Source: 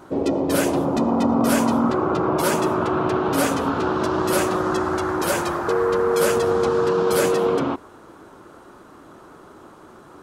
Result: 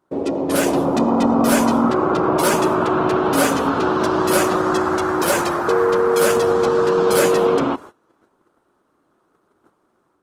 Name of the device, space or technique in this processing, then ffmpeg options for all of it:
video call: -af "highpass=f=140:p=1,dynaudnorm=f=360:g=3:m=1.78,agate=range=0.0794:threshold=0.0158:ratio=16:detection=peak" -ar 48000 -c:a libopus -b:a 24k

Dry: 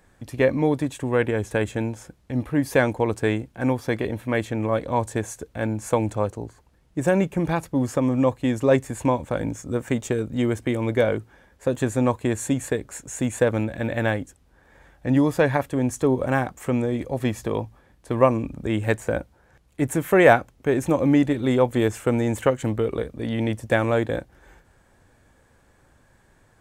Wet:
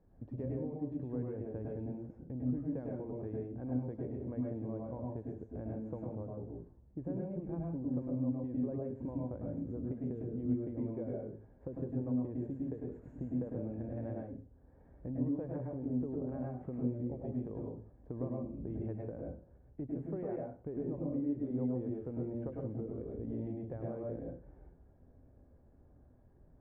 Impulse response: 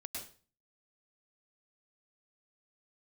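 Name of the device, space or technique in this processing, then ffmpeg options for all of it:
television next door: -filter_complex "[0:a]acompressor=threshold=0.0224:ratio=4,lowpass=500[s0];[1:a]atrim=start_sample=2205[s1];[s0][s1]afir=irnorm=-1:irlink=0,volume=0.841"

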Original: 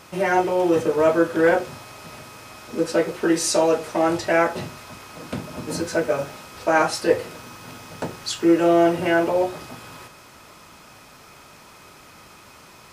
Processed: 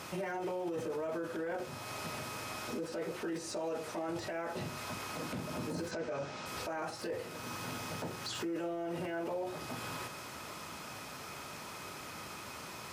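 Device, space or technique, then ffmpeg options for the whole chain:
podcast mastering chain: -filter_complex "[0:a]asettb=1/sr,asplit=3[s0][s1][s2];[s0]atrim=end=5.914[s3];[s1]atrim=start=5.91:end=6.46,asetpts=PTS-STARTPTS,afade=t=in:d=0.004:c=qsin,afade=t=out:st=0.546:d=0.004:c=qsin,lowpass=f=6800:w=0.5412,lowpass=f=6800:w=1.3066[s4];[s2]atrim=start=6.456[s5];[s3][s4]acrossfade=d=0.004:c1=hsin:c2=qsin[s6];[s6][s5]acrossfade=d=0.004:c1=qsin:c2=hsin,highpass=70,deesser=0.85,acompressor=threshold=0.0112:ratio=2,alimiter=level_in=2.37:limit=0.0631:level=0:latency=1:release=12,volume=0.422,volume=1.19" -ar 44100 -c:a libmp3lame -b:a 128k

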